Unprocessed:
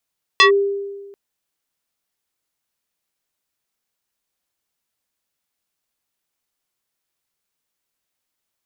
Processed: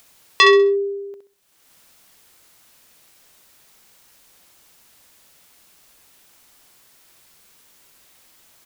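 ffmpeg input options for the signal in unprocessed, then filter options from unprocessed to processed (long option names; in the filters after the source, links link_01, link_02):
-f lavfi -i "aevalsrc='0.501*pow(10,-3*t/1.36)*sin(2*PI*399*t+2.8*clip(1-t/0.11,0,1)*sin(2*PI*3.82*399*t))':duration=0.74:sample_rate=44100"
-filter_complex "[0:a]acompressor=mode=upward:threshold=-34dB:ratio=2.5,asplit=2[link_01][link_02];[link_02]aecho=0:1:65|130|195|260:0.447|0.13|0.0376|0.0109[link_03];[link_01][link_03]amix=inputs=2:normalize=0"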